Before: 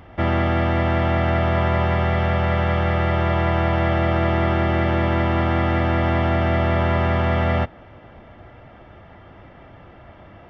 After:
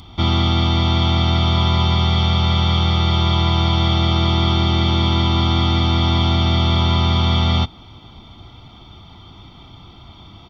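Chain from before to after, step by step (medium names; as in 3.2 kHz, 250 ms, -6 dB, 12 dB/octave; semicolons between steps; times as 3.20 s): resonant high shelf 2.7 kHz +11.5 dB, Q 3; comb 0.9 ms, depth 76%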